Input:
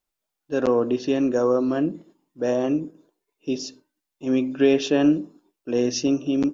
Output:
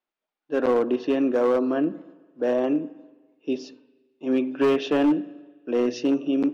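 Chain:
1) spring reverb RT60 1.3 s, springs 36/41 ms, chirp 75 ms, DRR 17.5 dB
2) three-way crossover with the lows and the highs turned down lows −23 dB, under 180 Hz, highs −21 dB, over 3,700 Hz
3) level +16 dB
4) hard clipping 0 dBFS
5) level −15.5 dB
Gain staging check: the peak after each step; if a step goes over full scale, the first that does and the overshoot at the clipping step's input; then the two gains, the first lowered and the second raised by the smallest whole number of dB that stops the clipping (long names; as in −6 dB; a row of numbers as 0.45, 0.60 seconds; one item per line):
−7.5, −8.0, +8.0, 0.0, −15.5 dBFS
step 3, 8.0 dB
step 3 +8 dB, step 5 −7.5 dB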